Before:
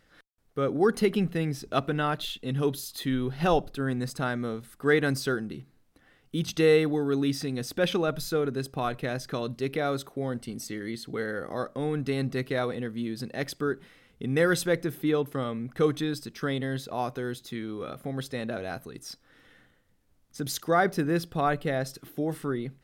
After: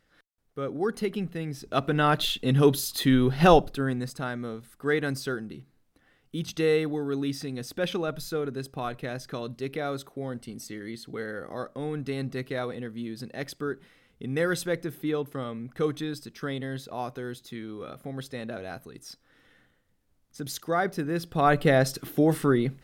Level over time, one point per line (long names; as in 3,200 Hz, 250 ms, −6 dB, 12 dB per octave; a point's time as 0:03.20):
0:01.44 −5 dB
0:02.18 +7 dB
0:03.49 +7 dB
0:04.15 −3 dB
0:21.14 −3 dB
0:21.63 +8 dB